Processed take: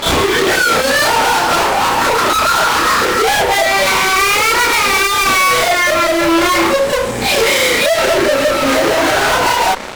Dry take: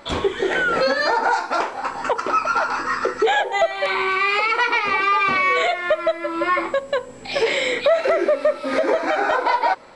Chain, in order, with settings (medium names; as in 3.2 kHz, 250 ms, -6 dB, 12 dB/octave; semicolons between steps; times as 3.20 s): fuzz box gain 39 dB, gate -44 dBFS; reverse echo 33 ms -3.5 dB